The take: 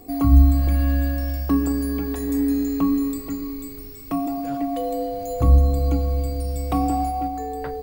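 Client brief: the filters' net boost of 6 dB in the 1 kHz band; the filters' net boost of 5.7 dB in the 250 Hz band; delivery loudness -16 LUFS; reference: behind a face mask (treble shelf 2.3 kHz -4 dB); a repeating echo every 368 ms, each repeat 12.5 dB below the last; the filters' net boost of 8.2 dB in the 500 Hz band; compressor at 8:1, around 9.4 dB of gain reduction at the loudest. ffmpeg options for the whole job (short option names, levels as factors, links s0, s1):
-af "equalizer=f=250:t=o:g=4,equalizer=f=500:t=o:g=7.5,equalizer=f=1000:t=o:g=5,acompressor=threshold=0.158:ratio=8,highshelf=f=2300:g=-4,aecho=1:1:368|736|1104:0.237|0.0569|0.0137,volume=2"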